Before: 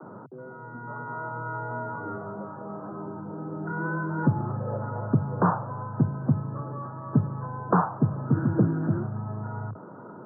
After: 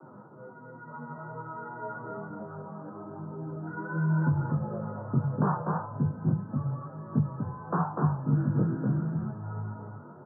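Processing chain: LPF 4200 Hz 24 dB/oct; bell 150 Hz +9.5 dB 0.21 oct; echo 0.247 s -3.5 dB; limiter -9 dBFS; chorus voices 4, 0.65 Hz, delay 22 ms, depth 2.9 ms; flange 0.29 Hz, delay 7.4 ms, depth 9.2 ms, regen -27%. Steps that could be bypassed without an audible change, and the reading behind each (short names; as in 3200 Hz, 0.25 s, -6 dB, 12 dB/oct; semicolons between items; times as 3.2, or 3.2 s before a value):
LPF 4200 Hz: input band ends at 1500 Hz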